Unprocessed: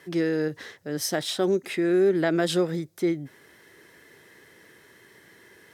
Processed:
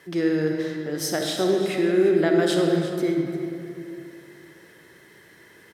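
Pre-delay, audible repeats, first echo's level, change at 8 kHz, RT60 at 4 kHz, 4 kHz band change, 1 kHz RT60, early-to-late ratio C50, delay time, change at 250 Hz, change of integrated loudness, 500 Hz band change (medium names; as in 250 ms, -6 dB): 34 ms, 1, -13.0 dB, +1.0 dB, 1.5 s, +1.5 dB, 2.7 s, 2.0 dB, 347 ms, +3.5 dB, +2.5 dB, +3.0 dB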